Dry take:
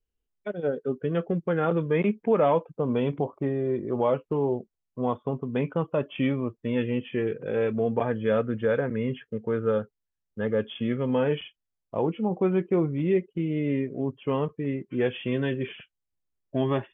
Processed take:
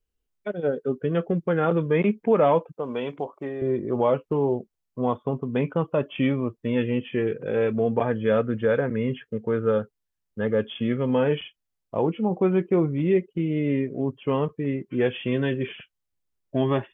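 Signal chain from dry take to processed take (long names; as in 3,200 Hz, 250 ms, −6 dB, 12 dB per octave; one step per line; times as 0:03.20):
0:02.72–0:03.62: high-pass filter 640 Hz 6 dB per octave
level +2.5 dB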